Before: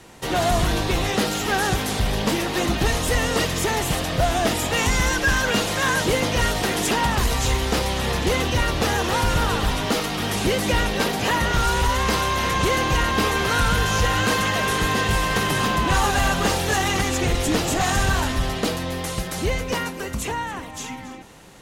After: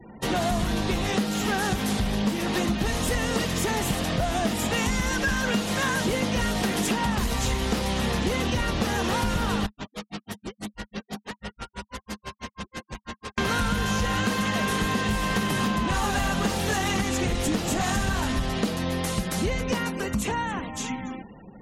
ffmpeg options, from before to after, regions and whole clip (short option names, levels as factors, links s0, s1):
-filter_complex "[0:a]asettb=1/sr,asplit=3[s0][s1][s2];[s0]atrim=end=9.664[s3];[s1]atrim=start=9.66:end=13.38,asetpts=PTS-STARTPTS,afade=t=in:d=0.004:c=qsin,afade=t=out:st=3.716:d=0.004:c=qsin,volume=39.8,asoftclip=hard,volume=0.0251,aeval=exprs='val(0)*pow(10,-36*(0.5-0.5*cos(2*PI*6.1*n/s))/20)':c=same[s4];[s2]atrim=start=13.376[s5];[s3][s4]acrossfade=d=0.004:c1=hsin:c2=qsin[s6];[s6][s5]acrossfade=d=0.004:c1=qsin:c2=hsin,afftfilt=real='re*gte(hypot(re,im),0.00794)':imag='im*gte(hypot(re,im),0.00794)':win_size=1024:overlap=0.75,equalizer=f=210:w=3.8:g=11,acompressor=threshold=0.0794:ratio=6"